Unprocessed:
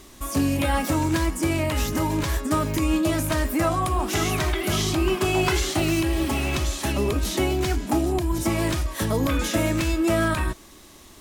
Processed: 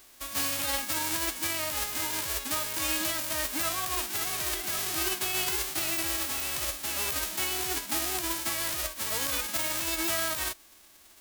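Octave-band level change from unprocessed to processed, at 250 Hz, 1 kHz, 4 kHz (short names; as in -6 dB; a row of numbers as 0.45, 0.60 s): -17.5, -8.5, -1.0 dB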